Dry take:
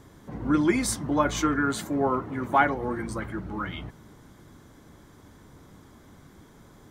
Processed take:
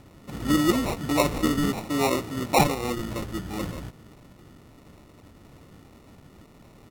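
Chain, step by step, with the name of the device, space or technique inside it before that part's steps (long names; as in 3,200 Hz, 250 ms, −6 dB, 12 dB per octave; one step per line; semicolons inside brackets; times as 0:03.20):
crushed at another speed (tape speed factor 1.25×; decimation without filtering 22×; tape speed factor 0.8×)
level +1 dB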